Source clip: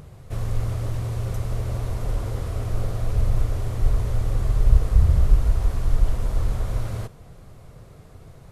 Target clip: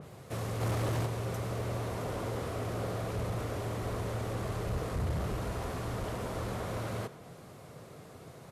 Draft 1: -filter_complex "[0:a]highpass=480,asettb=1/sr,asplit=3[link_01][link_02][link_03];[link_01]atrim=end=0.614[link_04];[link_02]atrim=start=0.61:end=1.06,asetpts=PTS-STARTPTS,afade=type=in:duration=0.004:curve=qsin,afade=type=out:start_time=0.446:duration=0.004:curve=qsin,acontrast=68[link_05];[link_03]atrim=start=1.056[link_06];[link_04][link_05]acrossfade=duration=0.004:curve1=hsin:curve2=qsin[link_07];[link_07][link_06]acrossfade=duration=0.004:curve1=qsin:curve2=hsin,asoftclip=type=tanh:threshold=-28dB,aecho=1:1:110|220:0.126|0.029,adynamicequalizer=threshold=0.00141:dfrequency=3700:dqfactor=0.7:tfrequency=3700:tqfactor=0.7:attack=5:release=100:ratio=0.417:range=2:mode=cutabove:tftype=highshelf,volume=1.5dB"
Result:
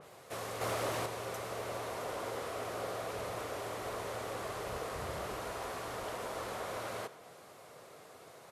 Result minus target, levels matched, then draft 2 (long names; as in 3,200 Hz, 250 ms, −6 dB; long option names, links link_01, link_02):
250 Hz band −5.0 dB
-filter_complex "[0:a]highpass=180,asettb=1/sr,asplit=3[link_01][link_02][link_03];[link_01]atrim=end=0.614[link_04];[link_02]atrim=start=0.61:end=1.06,asetpts=PTS-STARTPTS,afade=type=in:duration=0.004:curve=qsin,afade=type=out:start_time=0.446:duration=0.004:curve=qsin,acontrast=68[link_05];[link_03]atrim=start=1.056[link_06];[link_04][link_05]acrossfade=duration=0.004:curve1=hsin:curve2=qsin[link_07];[link_07][link_06]acrossfade=duration=0.004:curve1=qsin:curve2=hsin,asoftclip=type=tanh:threshold=-28dB,aecho=1:1:110|220:0.126|0.029,adynamicequalizer=threshold=0.00141:dfrequency=3700:dqfactor=0.7:tfrequency=3700:tqfactor=0.7:attack=5:release=100:ratio=0.417:range=2:mode=cutabove:tftype=highshelf,volume=1.5dB"